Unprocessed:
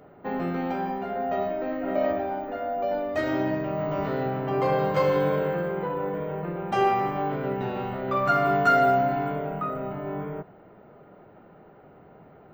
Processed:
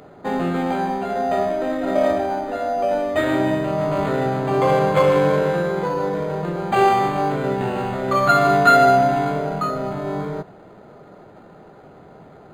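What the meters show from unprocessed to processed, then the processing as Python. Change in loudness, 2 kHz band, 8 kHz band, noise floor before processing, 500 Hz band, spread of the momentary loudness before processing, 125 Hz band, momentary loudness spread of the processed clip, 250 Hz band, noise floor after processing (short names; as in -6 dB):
+7.0 dB, +7.0 dB, n/a, -52 dBFS, +6.5 dB, 10 LU, +6.5 dB, 10 LU, +6.5 dB, -45 dBFS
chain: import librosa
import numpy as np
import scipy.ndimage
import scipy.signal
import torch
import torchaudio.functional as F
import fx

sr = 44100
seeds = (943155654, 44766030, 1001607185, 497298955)

y = fx.high_shelf(x, sr, hz=2700.0, db=10.0)
y = np.interp(np.arange(len(y)), np.arange(len(y))[::8], y[::8])
y = y * 10.0 ** (6.5 / 20.0)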